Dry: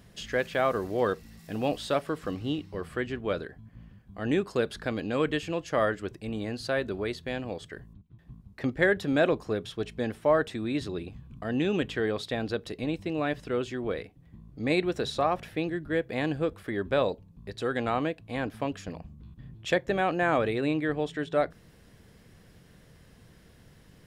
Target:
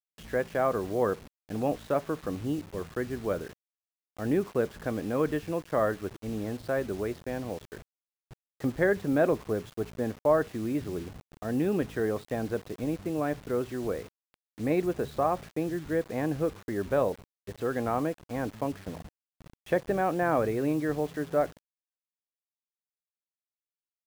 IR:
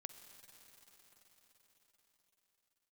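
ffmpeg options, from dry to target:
-af "agate=range=0.282:threshold=0.00708:ratio=16:detection=peak,lowpass=1400,acrusher=bits=7:mix=0:aa=0.000001"

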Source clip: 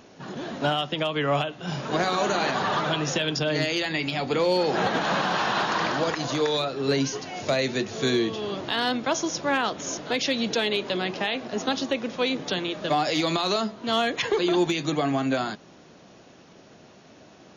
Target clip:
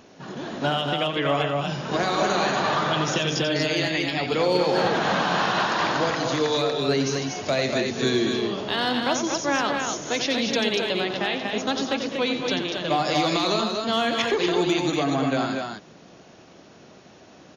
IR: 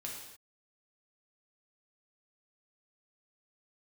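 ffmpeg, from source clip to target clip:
-af "aecho=1:1:89|204|239:0.376|0.266|0.596"

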